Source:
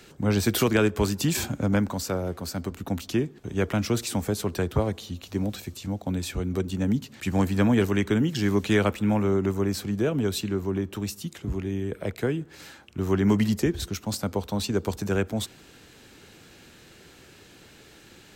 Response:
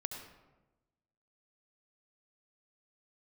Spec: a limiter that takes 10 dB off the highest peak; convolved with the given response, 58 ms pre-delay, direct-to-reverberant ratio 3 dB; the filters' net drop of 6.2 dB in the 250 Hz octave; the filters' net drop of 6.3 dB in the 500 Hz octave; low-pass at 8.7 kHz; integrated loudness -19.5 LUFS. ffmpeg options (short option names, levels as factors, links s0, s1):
-filter_complex "[0:a]lowpass=8700,equalizer=f=250:t=o:g=-7,equalizer=f=500:t=o:g=-5.5,alimiter=limit=0.075:level=0:latency=1,asplit=2[s0][s1];[1:a]atrim=start_sample=2205,adelay=58[s2];[s1][s2]afir=irnorm=-1:irlink=0,volume=0.75[s3];[s0][s3]amix=inputs=2:normalize=0,volume=3.76"